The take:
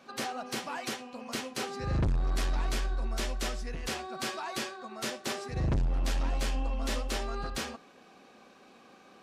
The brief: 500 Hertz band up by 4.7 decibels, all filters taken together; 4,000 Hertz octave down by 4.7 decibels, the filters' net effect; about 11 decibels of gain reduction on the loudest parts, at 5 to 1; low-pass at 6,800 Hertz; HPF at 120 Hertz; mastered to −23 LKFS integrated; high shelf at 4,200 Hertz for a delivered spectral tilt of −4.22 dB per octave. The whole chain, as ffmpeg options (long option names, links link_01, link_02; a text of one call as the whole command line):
ffmpeg -i in.wav -af "highpass=120,lowpass=6800,equalizer=frequency=500:width_type=o:gain=6,equalizer=frequency=4000:width_type=o:gain=-8.5,highshelf=frequency=4200:gain=4.5,acompressor=threshold=-38dB:ratio=5,volume=19dB" out.wav